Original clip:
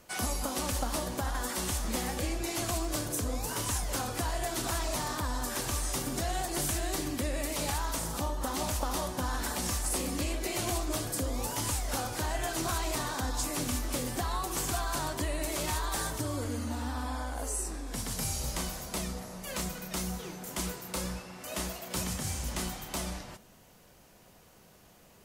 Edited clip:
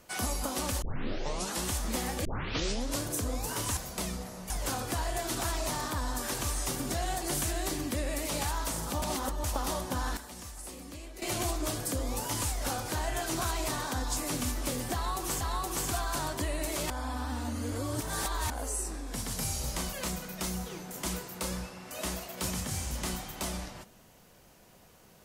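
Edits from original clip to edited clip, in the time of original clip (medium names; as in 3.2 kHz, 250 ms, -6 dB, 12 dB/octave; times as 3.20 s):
0.82 s: tape start 0.82 s
2.25 s: tape start 0.76 s
8.29–8.71 s: reverse
9.44–10.49 s: gain -12 dB
14.21–14.68 s: loop, 2 plays
15.70–17.30 s: reverse
18.73–19.46 s: move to 3.77 s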